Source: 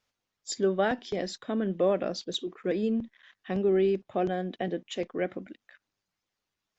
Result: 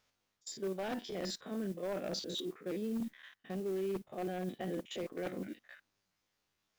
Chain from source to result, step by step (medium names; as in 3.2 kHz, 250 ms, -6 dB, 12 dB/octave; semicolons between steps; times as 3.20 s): spectrogram pixelated in time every 50 ms; reverse; compression 5:1, threshold -40 dBFS, peak gain reduction 17 dB; reverse; wavefolder -34.5 dBFS; modulation noise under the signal 24 dB; trim +4 dB